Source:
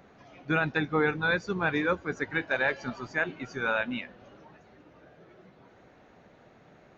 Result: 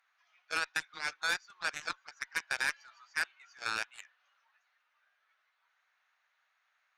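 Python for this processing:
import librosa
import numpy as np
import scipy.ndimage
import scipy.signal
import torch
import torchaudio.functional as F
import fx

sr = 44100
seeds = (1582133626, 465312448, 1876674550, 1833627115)

y = scipy.signal.sosfilt(scipy.signal.butter(4, 1200.0, 'highpass', fs=sr, output='sos'), x)
y = fx.cheby_harmonics(y, sr, harmonics=(7,), levels_db=(-14,), full_scale_db=-16.5)
y = y * 10.0 ** (-3.0 / 20.0)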